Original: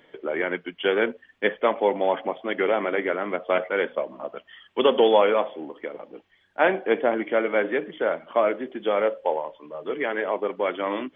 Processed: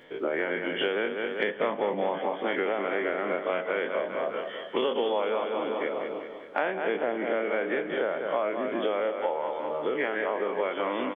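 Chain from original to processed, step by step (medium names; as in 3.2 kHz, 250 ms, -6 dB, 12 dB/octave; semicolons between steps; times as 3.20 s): every event in the spectrogram widened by 60 ms; feedback delay 197 ms, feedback 54%, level -9.5 dB; compression 6:1, threshold -25 dBFS, peak gain reduction 15 dB; 1.56–2.20 s: peaking EQ 160 Hz +9.5 dB 1 oct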